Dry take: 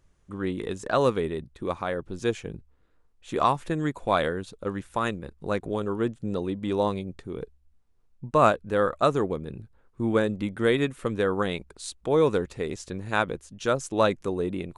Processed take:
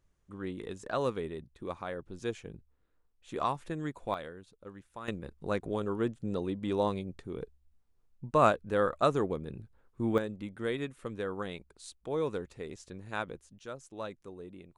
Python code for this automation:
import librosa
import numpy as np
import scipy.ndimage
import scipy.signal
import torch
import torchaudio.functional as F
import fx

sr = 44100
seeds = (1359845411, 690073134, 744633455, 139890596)

y = fx.gain(x, sr, db=fx.steps((0.0, -9.0), (4.14, -17.0), (5.08, -4.5), (10.18, -11.0), (13.59, -18.0)))